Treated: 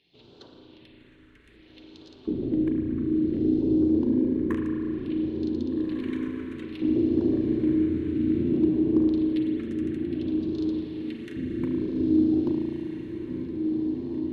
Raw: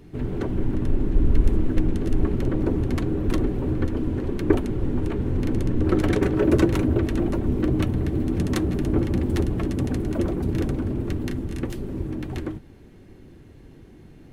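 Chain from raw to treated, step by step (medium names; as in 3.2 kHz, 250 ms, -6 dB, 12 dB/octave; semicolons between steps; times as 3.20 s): treble shelf 4.3 kHz -7.5 dB; hum notches 50/100/150/200/250/300 Hz; in parallel at 0 dB: peak limiter -16.5 dBFS, peak gain reduction 11 dB; on the sum: gain riding within 4 dB 0.5 s; LFO band-pass square 0.22 Hz 300–4000 Hz; wavefolder -14.5 dBFS; phase shifter stages 4, 0.59 Hz, lowest notch 690–2100 Hz; echo that smears into a reverb 1648 ms, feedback 41%, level -5 dB; spring tank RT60 2.4 s, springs 35 ms, chirp 25 ms, DRR 1.5 dB; trim -3 dB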